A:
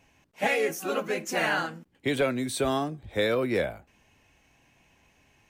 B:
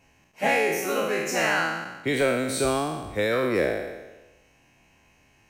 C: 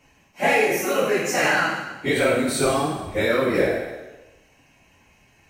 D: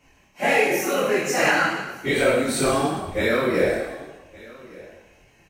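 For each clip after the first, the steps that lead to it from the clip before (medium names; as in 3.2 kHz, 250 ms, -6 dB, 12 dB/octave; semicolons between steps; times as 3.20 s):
spectral sustain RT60 1.14 s; band-stop 3.5 kHz, Q 8.6
phase randomisation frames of 50 ms; trim +3.5 dB
chorus voices 6, 1.4 Hz, delay 24 ms, depth 3 ms; delay 1166 ms -21.5 dB; trim +3 dB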